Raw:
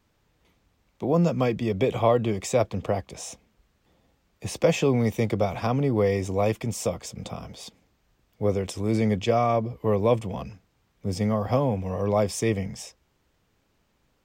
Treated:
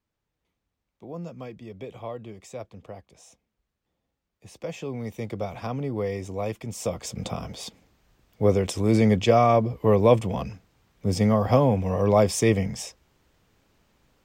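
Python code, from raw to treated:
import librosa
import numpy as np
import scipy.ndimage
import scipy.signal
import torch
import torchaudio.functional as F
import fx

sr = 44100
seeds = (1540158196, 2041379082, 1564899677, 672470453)

y = fx.gain(x, sr, db=fx.line((4.46, -15.0), (5.48, -6.0), (6.66, -6.0), (7.13, 4.0)))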